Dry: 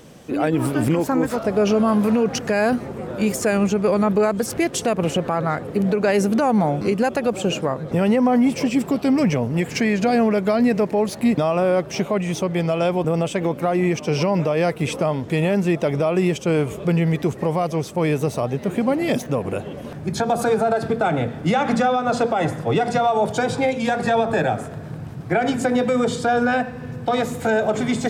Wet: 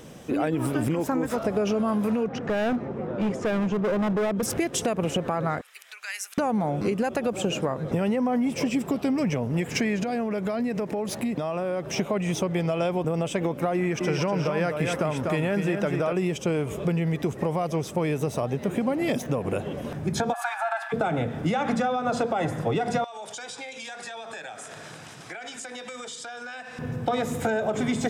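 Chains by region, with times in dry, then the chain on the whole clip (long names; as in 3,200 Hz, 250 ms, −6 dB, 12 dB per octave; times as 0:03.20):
0:02.26–0:04.43: high-pass filter 110 Hz + head-to-tape spacing loss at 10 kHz 28 dB + gain into a clipping stage and back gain 20.5 dB
0:05.61–0:06.38: Bessel high-pass filter 2,500 Hz, order 4 + dynamic equaliser 3,400 Hz, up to −5 dB, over −45 dBFS, Q 1.5
0:10.03–0:11.98: high-pass filter 61 Hz + downward compressor 4 to 1, threshold −25 dBFS
0:13.76–0:16.13: parametric band 1,500 Hz +8.5 dB 0.51 octaves + single-tap delay 245 ms −6 dB
0:20.32–0:20.92: Butterworth high-pass 730 Hz 72 dB per octave + high shelf with overshoot 3,500 Hz −6 dB, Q 1.5 + steady tone 1,700 Hz −38 dBFS
0:23.04–0:26.79: meter weighting curve ITU-R 468 + downward compressor, threshold −36 dBFS
whole clip: notch filter 4,400 Hz, Q 12; downward compressor, threshold −22 dBFS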